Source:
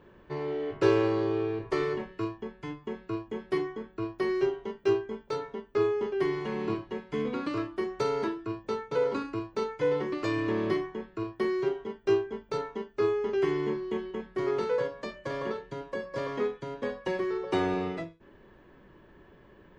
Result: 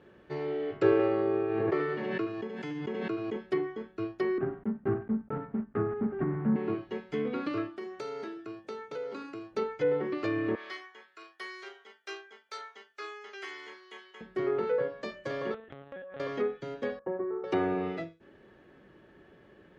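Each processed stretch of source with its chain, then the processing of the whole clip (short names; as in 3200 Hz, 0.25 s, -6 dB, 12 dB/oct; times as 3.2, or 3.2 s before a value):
0.92–3.36 HPF 130 Hz 24 dB/oct + echo 74 ms -6.5 dB + backwards sustainer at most 21 dB/s
4.38–6.56 block floating point 3-bit + LPF 1500 Hz 24 dB/oct + resonant low shelf 300 Hz +8 dB, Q 3
7.69–9.51 HPF 210 Hz 6 dB/oct + compressor 2.5:1, threshold -38 dBFS
10.55–14.21 HPF 1300 Hz + notch 2700 Hz, Q 15
15.54–16.2 LPC vocoder at 8 kHz pitch kept + compressor 3:1, threshold -40 dBFS
16.99–17.44 G.711 law mismatch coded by A + LPF 1200 Hz 24 dB/oct + low shelf 140 Hz -8 dB
whole clip: notch 1000 Hz, Q 5.3; treble ducked by the level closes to 1900 Hz, closed at -25 dBFS; HPF 130 Hz 6 dB/oct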